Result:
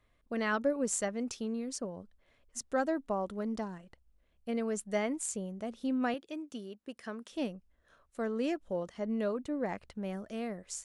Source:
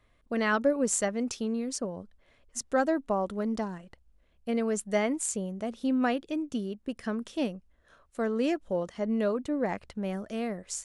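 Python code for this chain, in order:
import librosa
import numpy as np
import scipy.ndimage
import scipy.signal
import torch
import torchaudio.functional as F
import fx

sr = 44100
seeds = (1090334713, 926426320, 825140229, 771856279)

y = fx.highpass(x, sr, hz=400.0, slope=6, at=(6.14, 7.32))
y = F.gain(torch.from_numpy(y), -5.0).numpy()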